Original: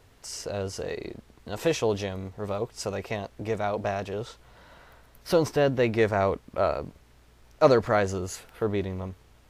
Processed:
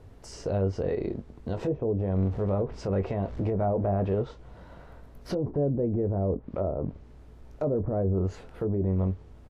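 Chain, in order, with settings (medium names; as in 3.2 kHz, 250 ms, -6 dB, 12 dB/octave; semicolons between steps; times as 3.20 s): 2.16–4.22 s: jump at every zero crossing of -41.5 dBFS; low-pass that closes with the level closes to 540 Hz, closed at -22 dBFS; tilt shelf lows +8.5 dB; peak limiter -20.5 dBFS, peak gain reduction 14 dB; doubling 21 ms -9.5 dB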